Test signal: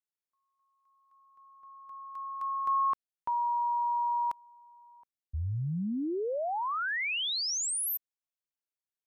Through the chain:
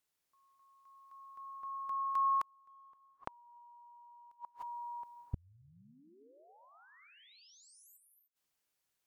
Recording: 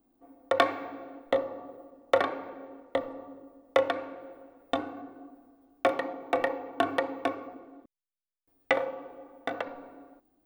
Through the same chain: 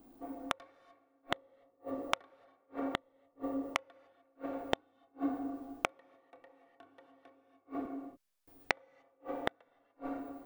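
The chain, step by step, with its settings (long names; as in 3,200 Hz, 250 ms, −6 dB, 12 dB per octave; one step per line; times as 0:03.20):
sine wavefolder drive 5 dB, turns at −6.5 dBFS
reverb whose tail is shaped and stops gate 320 ms rising, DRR 6 dB
gate with flip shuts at −24 dBFS, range −41 dB
level +1 dB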